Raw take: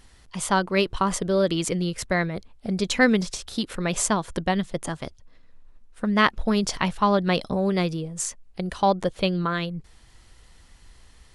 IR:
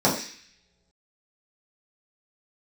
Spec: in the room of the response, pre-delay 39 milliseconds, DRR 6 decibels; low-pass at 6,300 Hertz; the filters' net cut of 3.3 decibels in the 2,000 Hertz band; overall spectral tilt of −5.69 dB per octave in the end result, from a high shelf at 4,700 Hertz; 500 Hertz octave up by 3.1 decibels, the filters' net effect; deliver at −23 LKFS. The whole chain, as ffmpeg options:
-filter_complex "[0:a]lowpass=6300,equalizer=frequency=500:width_type=o:gain=4,equalizer=frequency=2000:width_type=o:gain=-5,highshelf=frequency=4700:gain=5,asplit=2[link_01][link_02];[1:a]atrim=start_sample=2205,adelay=39[link_03];[link_02][link_03]afir=irnorm=-1:irlink=0,volume=-23.5dB[link_04];[link_01][link_04]amix=inputs=2:normalize=0,volume=-2dB"

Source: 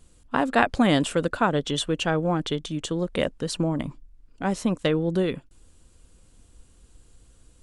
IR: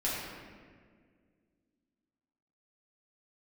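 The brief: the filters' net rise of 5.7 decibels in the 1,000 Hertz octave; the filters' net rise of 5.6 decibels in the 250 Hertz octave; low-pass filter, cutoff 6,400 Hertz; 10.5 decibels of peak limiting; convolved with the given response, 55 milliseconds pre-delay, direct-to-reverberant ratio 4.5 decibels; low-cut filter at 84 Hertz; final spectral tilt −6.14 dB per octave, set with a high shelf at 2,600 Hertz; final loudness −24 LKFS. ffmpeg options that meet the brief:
-filter_complex "[0:a]highpass=84,lowpass=6400,equalizer=frequency=250:width_type=o:gain=7,equalizer=frequency=1000:width_type=o:gain=8,highshelf=frequency=2600:gain=-5.5,alimiter=limit=-10dB:level=0:latency=1,asplit=2[link_01][link_02];[1:a]atrim=start_sample=2205,adelay=55[link_03];[link_02][link_03]afir=irnorm=-1:irlink=0,volume=-11.5dB[link_04];[link_01][link_04]amix=inputs=2:normalize=0,volume=-3dB"

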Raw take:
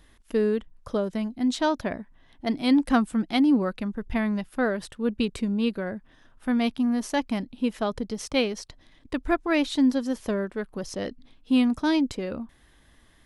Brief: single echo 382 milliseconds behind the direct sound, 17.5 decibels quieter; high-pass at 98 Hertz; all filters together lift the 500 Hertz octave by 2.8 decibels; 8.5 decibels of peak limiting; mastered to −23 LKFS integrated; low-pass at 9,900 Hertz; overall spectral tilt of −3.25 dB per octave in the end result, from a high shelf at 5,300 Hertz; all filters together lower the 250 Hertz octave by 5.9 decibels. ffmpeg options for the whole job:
ffmpeg -i in.wav -af "highpass=98,lowpass=9900,equalizer=frequency=250:width_type=o:gain=-8,equalizer=frequency=500:width_type=o:gain=5.5,highshelf=frequency=5300:gain=3,alimiter=limit=-18dB:level=0:latency=1,aecho=1:1:382:0.133,volume=7dB" out.wav

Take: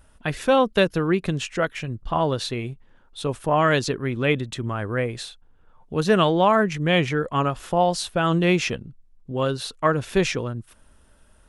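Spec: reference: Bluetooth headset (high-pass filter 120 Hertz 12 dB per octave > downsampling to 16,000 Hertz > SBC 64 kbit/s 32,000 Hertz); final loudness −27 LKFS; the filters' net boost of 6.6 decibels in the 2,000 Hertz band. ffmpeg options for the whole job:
ffmpeg -i in.wav -af "highpass=120,equalizer=frequency=2000:width_type=o:gain=8.5,aresample=16000,aresample=44100,volume=-6dB" -ar 32000 -c:a sbc -b:a 64k out.sbc

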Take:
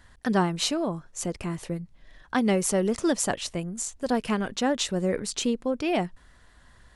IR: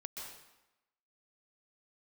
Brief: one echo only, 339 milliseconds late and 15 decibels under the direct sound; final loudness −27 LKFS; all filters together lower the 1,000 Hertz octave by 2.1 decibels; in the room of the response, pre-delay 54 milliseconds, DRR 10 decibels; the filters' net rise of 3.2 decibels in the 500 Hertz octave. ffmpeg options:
-filter_complex "[0:a]equalizer=frequency=500:width_type=o:gain=5.5,equalizer=frequency=1000:width_type=o:gain=-6,aecho=1:1:339:0.178,asplit=2[link_01][link_02];[1:a]atrim=start_sample=2205,adelay=54[link_03];[link_02][link_03]afir=irnorm=-1:irlink=0,volume=-8dB[link_04];[link_01][link_04]amix=inputs=2:normalize=0,volume=-1.5dB"

